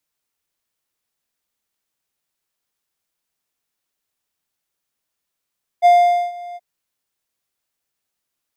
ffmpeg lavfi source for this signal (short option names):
-f lavfi -i "aevalsrc='0.596*(1-4*abs(mod(703*t+0.25,1)-0.5))':d=0.776:s=44100,afade=t=in:d=0.035,afade=t=out:st=0.035:d=0.462:silence=0.075,afade=t=out:st=0.74:d=0.036"